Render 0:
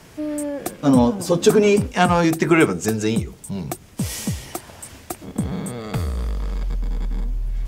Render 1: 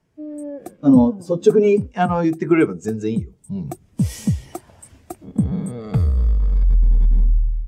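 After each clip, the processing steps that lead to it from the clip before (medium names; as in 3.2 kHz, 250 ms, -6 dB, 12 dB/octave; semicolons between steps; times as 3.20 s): level rider gain up to 9.5 dB; spectral contrast expander 1.5:1; trim -1 dB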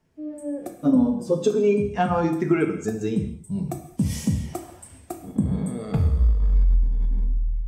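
compression, threshold -16 dBFS, peak gain reduction 9 dB; gated-style reverb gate 260 ms falling, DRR 4 dB; trim -1.5 dB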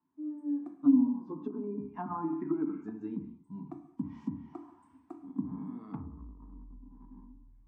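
low-pass that closes with the level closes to 660 Hz, closed at -15.5 dBFS; two resonant band-passes 530 Hz, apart 1.8 oct; trim -1 dB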